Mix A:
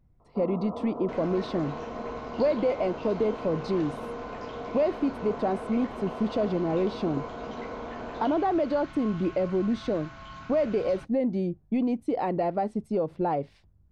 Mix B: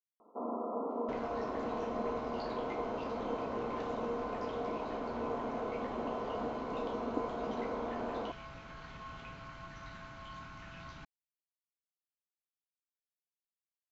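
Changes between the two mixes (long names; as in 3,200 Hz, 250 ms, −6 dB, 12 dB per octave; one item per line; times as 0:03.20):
speech: muted
second sound −4.0 dB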